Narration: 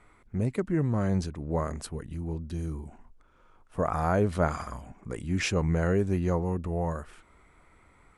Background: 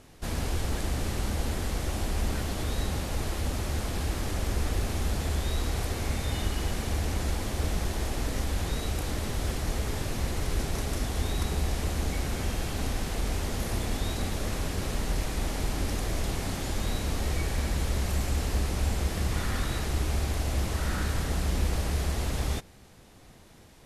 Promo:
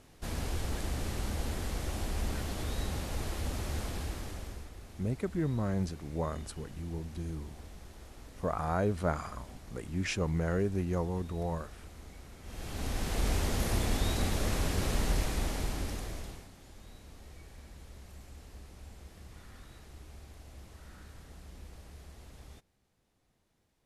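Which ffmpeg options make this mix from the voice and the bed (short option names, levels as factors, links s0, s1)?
-filter_complex "[0:a]adelay=4650,volume=0.562[s0];[1:a]volume=5.62,afade=t=out:st=3.82:d=0.88:silence=0.177828,afade=t=in:st=12.43:d=0.84:silence=0.1,afade=t=out:st=15.05:d=1.44:silence=0.0794328[s1];[s0][s1]amix=inputs=2:normalize=0"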